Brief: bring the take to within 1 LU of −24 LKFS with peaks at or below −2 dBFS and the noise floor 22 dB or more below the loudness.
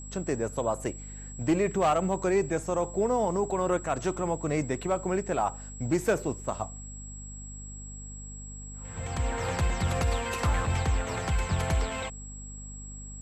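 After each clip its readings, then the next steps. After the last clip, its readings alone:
mains hum 50 Hz; hum harmonics up to 250 Hz; level of the hum −41 dBFS; interfering tone 7,700 Hz; level of the tone −44 dBFS; integrated loudness −29.5 LKFS; sample peak −16.0 dBFS; target loudness −24.0 LKFS
→ hum removal 50 Hz, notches 5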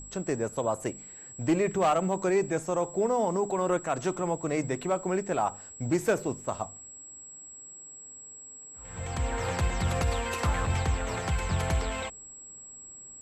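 mains hum none found; interfering tone 7,700 Hz; level of the tone −44 dBFS
→ notch filter 7,700 Hz, Q 30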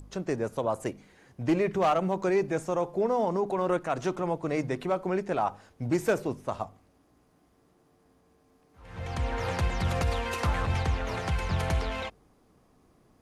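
interfering tone none found; integrated loudness −29.5 LKFS; sample peak −16.0 dBFS; target loudness −24.0 LKFS
→ level +5.5 dB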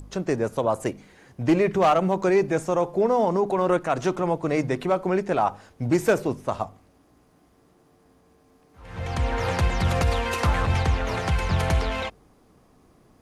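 integrated loudness −24.0 LKFS; sample peak −10.5 dBFS; background noise floor −60 dBFS

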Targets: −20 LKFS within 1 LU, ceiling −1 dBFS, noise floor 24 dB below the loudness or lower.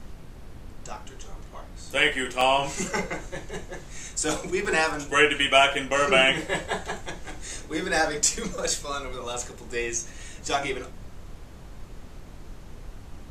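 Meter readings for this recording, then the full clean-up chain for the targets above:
number of dropouts 2; longest dropout 2.4 ms; background noise floor −44 dBFS; target noise floor −49 dBFS; integrated loudness −24.5 LKFS; sample peak −4.5 dBFS; target loudness −20.0 LKFS
→ repair the gap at 0:02.41/0:04.65, 2.4 ms
noise reduction from a noise print 6 dB
level +4.5 dB
brickwall limiter −1 dBFS

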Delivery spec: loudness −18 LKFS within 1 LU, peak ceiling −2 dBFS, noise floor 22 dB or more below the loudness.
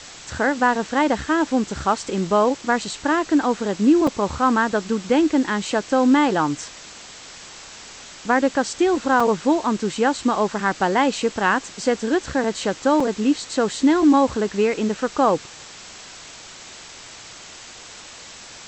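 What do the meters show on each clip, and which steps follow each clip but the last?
number of dropouts 3; longest dropout 4.1 ms; background noise floor −41 dBFS; target noise floor −43 dBFS; integrated loudness −20.5 LKFS; sample peak −6.0 dBFS; target loudness −18.0 LKFS
→ repair the gap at 0:04.07/0:09.20/0:13.00, 4.1 ms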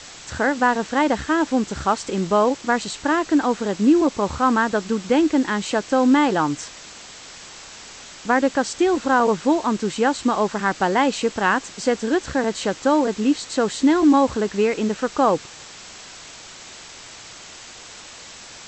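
number of dropouts 0; background noise floor −41 dBFS; target noise floor −43 dBFS
→ broadband denoise 6 dB, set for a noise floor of −41 dBFS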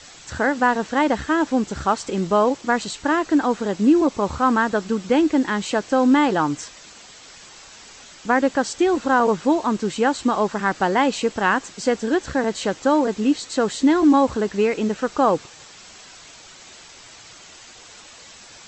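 background noise floor −44 dBFS; integrated loudness −20.5 LKFS; sample peak −6.0 dBFS; target loudness −18.0 LKFS
→ level +2.5 dB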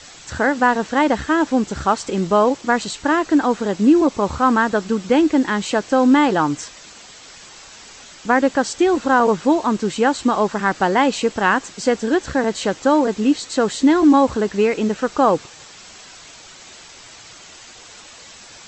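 integrated loudness −18.0 LKFS; sample peak −3.5 dBFS; background noise floor −42 dBFS

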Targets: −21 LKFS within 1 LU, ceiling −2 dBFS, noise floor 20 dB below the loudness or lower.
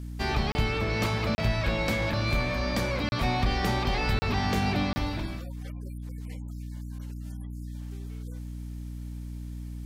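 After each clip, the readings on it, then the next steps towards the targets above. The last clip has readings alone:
number of dropouts 5; longest dropout 30 ms; mains hum 60 Hz; hum harmonics up to 300 Hz; level of the hum −35 dBFS; integrated loudness −30.0 LKFS; sample peak −15.5 dBFS; target loudness −21.0 LKFS
→ repair the gap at 0:00.52/0:01.35/0:03.09/0:04.19/0:04.93, 30 ms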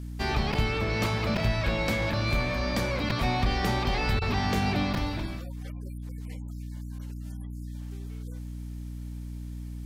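number of dropouts 0; mains hum 60 Hz; hum harmonics up to 300 Hz; level of the hum −35 dBFS
→ hum removal 60 Hz, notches 5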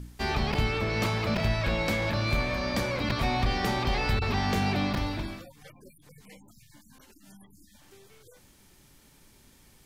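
mains hum none found; integrated loudness −28.0 LKFS; sample peak −15.5 dBFS; target loudness −21.0 LKFS
→ level +7 dB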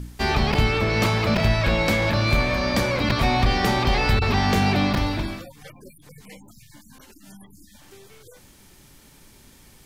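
integrated loudness −21.0 LKFS; sample peak −8.5 dBFS; background noise floor −52 dBFS

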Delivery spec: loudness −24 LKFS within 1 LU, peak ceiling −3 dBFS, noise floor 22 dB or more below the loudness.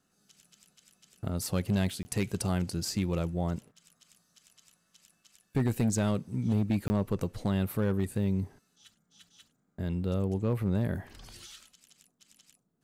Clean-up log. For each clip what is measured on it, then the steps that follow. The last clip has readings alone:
share of clipped samples 1.2%; peaks flattened at −21.5 dBFS; number of dropouts 2; longest dropout 20 ms; integrated loudness −31.0 LKFS; sample peak −21.5 dBFS; target loudness −24.0 LKFS
→ clipped peaks rebuilt −21.5 dBFS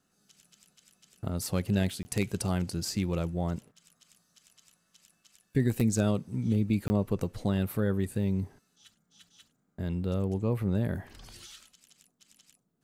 share of clipped samples 0.0%; number of dropouts 2; longest dropout 20 ms
→ repair the gap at 0:02.03/0:06.88, 20 ms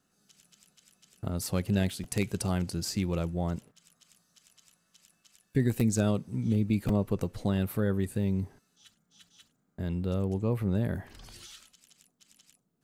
number of dropouts 0; integrated loudness −30.5 LKFS; sample peak −12.5 dBFS; target loudness −24.0 LKFS
→ level +6.5 dB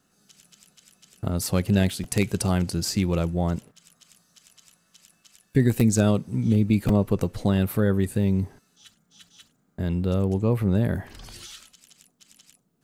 integrated loudness −24.0 LKFS; sample peak −6.0 dBFS; background noise floor −68 dBFS

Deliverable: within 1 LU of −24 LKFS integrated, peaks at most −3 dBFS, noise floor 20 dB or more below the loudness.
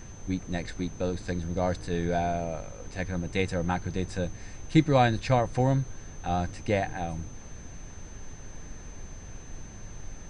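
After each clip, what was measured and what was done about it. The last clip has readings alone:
interfering tone 6,200 Hz; level of the tone −51 dBFS; background noise floor −44 dBFS; target noise floor −49 dBFS; integrated loudness −29.0 LKFS; sample peak −9.0 dBFS; target loudness −24.0 LKFS
→ notch filter 6,200 Hz, Q 30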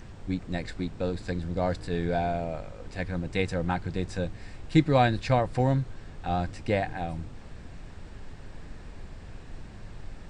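interfering tone none found; background noise floor −44 dBFS; target noise floor −49 dBFS
→ noise reduction from a noise print 6 dB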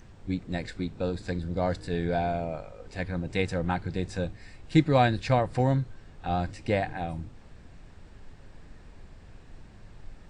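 background noise floor −50 dBFS; integrated loudness −29.0 LKFS; sample peak −9.0 dBFS; target loudness −24.0 LKFS
→ level +5 dB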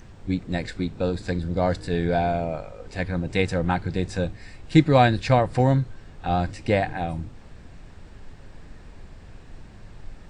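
integrated loudness −24.0 LKFS; sample peak −4.0 dBFS; background noise floor −45 dBFS

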